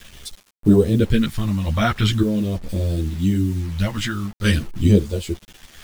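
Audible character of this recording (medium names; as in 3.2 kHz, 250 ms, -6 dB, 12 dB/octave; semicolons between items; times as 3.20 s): phasing stages 2, 0.44 Hz, lowest notch 400–1700 Hz; random-step tremolo 1.8 Hz, depth 65%; a quantiser's noise floor 8-bit, dither none; a shimmering, thickened sound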